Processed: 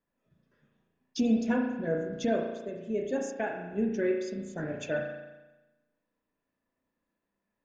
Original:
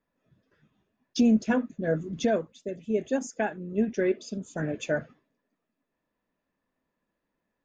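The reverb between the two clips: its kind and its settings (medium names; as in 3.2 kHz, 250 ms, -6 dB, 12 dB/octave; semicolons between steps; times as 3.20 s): spring tank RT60 1.1 s, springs 35 ms, chirp 80 ms, DRR 2 dB; trim -5 dB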